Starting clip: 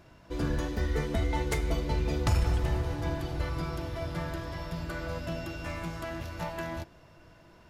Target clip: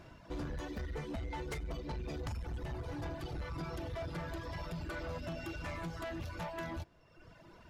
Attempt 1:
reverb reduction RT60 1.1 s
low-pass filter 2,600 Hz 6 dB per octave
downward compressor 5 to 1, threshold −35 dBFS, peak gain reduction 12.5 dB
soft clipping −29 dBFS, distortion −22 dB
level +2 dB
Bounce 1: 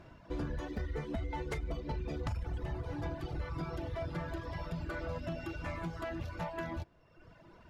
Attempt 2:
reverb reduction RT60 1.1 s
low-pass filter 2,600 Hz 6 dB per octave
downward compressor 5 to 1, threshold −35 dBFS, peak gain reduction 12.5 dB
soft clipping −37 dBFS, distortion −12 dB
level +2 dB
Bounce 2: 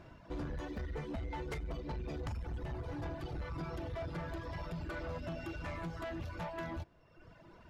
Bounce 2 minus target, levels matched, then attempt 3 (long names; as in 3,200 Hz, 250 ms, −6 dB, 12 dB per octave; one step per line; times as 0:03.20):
8,000 Hz band −5.5 dB
reverb reduction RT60 1.1 s
low-pass filter 7,100 Hz 6 dB per octave
downward compressor 5 to 1, threshold −35 dBFS, peak gain reduction 12.5 dB
soft clipping −37 dBFS, distortion −12 dB
level +2 dB